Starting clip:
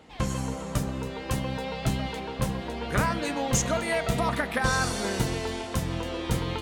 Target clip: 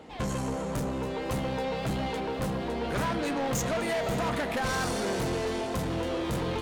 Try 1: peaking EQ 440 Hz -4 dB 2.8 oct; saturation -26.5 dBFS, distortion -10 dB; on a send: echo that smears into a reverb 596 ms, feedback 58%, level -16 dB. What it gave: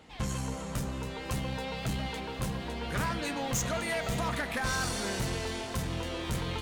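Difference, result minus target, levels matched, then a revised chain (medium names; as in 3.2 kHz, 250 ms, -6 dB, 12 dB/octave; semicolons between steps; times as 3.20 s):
500 Hz band -4.0 dB
peaking EQ 440 Hz +6.5 dB 2.8 oct; saturation -26.5 dBFS, distortion -7 dB; on a send: echo that smears into a reverb 596 ms, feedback 58%, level -16 dB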